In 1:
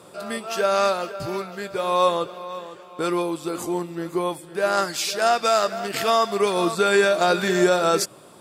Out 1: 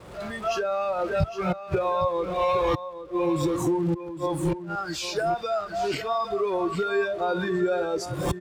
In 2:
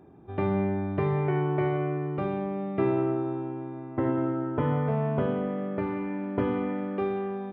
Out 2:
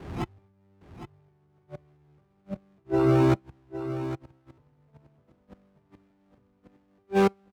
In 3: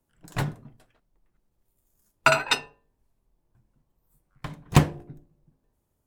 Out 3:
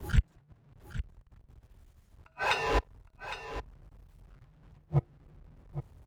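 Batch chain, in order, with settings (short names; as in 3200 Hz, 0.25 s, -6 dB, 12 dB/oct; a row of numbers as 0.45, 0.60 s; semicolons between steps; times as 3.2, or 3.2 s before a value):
zero-crossing step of -21.5 dBFS; recorder AGC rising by 45 dB/s; RIAA curve playback; flipped gate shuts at -1 dBFS, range -31 dB; HPF 55 Hz 12 dB/oct; expander -34 dBFS; bell 230 Hz -6.5 dB 2.2 oct; spectral noise reduction 13 dB; on a send: echo 0.811 s -11.5 dB; on the sum: normalise peaks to -12 dBFS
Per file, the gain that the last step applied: -7.5, -5.5, -7.0 dB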